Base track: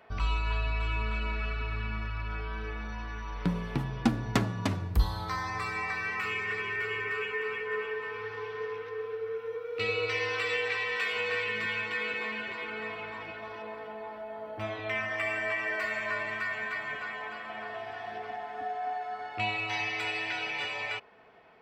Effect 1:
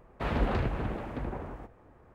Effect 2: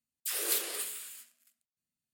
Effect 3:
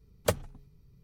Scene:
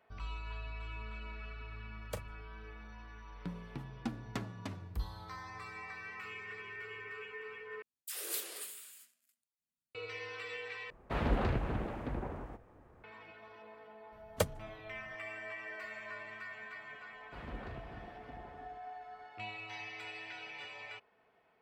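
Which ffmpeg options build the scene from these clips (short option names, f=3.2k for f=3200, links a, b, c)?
-filter_complex "[3:a]asplit=2[a][b];[1:a]asplit=2[c][d];[0:a]volume=-13dB[e];[a]asplit=2[f][g];[g]adelay=36,volume=-13dB[h];[f][h]amix=inputs=2:normalize=0[i];[e]asplit=3[j][k][l];[j]atrim=end=7.824[m];[2:a]atrim=end=2.13,asetpts=PTS-STARTPTS,volume=-8dB[n];[k]atrim=start=9.946:end=10.904[o];[c]atrim=end=2.14,asetpts=PTS-STARTPTS,volume=-3dB[p];[l]atrim=start=13.036[q];[i]atrim=end=1.03,asetpts=PTS-STARTPTS,volume=-15.5dB,afade=t=in:d=0.004:c=hsin,afade=t=out:st=1.026:d=0.004:c=hsin,adelay=1850[r];[b]atrim=end=1.03,asetpts=PTS-STARTPTS,volume=-4.5dB,afade=t=in:d=0.004:c=hsin,afade=t=out:st=1.026:d=0.004:c=hsin,adelay=622692S[s];[d]atrim=end=2.14,asetpts=PTS-STARTPTS,volume=-17dB,afade=t=in:d=0.004:c=hsin,afade=t=out:st=2.136:d=0.004:c=hsin,adelay=17120[t];[m][n]acrossfade=d=0.004:c1=hsin:c2=hsin[u];[u][o]acrossfade=d=0.004:c1=hsin:c2=hsin[v];[v][p]acrossfade=d=0.004:c1=hsin:c2=hsin[w];[w][q]acrossfade=d=0.004:c1=hsin:c2=hsin[x];[x][r][s][t]amix=inputs=4:normalize=0"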